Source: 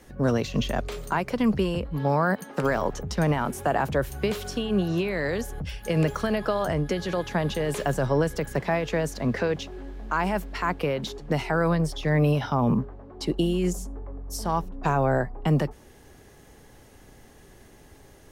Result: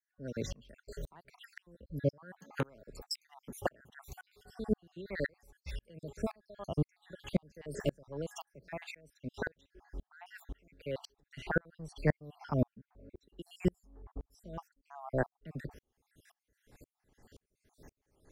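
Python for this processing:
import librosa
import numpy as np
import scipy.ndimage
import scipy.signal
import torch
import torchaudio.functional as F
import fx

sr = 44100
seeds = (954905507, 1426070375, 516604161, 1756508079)

y = fx.spec_dropout(x, sr, seeds[0], share_pct=60)
y = fx.high_shelf(y, sr, hz=2700.0, db=8.5, at=(2.88, 3.34))
y = fx.tremolo_decay(y, sr, direction='swelling', hz=1.9, depth_db=39)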